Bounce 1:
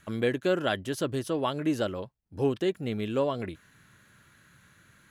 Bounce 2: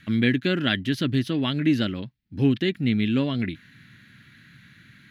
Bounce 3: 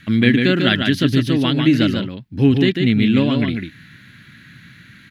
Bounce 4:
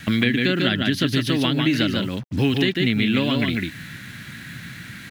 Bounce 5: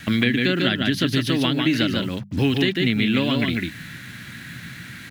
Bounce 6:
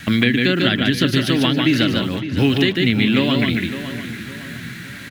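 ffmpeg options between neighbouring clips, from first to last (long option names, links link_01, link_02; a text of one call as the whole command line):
ffmpeg -i in.wav -af "equalizer=frequency=125:width_type=o:width=1:gain=8,equalizer=frequency=250:width_type=o:width=1:gain=12,equalizer=frequency=500:width_type=o:width=1:gain=-8,equalizer=frequency=1000:width_type=o:width=1:gain=-7,equalizer=frequency=2000:width_type=o:width=1:gain=11,equalizer=frequency=4000:width_type=o:width=1:gain=10,equalizer=frequency=8000:width_type=o:width=1:gain=-10" out.wav
ffmpeg -i in.wav -af "aecho=1:1:146:0.562,volume=6.5dB" out.wav
ffmpeg -i in.wav -filter_complex "[0:a]acrusher=bits=7:mix=0:aa=0.5,acrossover=split=570|2100[link_01][link_02][link_03];[link_01]acompressor=threshold=-28dB:ratio=4[link_04];[link_02]acompressor=threshold=-36dB:ratio=4[link_05];[link_03]acompressor=threshold=-32dB:ratio=4[link_06];[link_04][link_05][link_06]amix=inputs=3:normalize=0,volume=6.5dB" out.wav
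ffmpeg -i in.wav -af "bandreject=frequency=50:width_type=h:width=6,bandreject=frequency=100:width_type=h:width=6,bandreject=frequency=150:width_type=h:width=6,bandreject=frequency=200:width_type=h:width=6" out.wav
ffmpeg -i in.wav -filter_complex "[0:a]asplit=2[link_01][link_02];[link_02]adelay=560,lowpass=frequency=3900:poles=1,volume=-11.5dB,asplit=2[link_03][link_04];[link_04]adelay=560,lowpass=frequency=3900:poles=1,volume=0.39,asplit=2[link_05][link_06];[link_06]adelay=560,lowpass=frequency=3900:poles=1,volume=0.39,asplit=2[link_07][link_08];[link_08]adelay=560,lowpass=frequency=3900:poles=1,volume=0.39[link_09];[link_01][link_03][link_05][link_07][link_09]amix=inputs=5:normalize=0,volume=3.5dB" out.wav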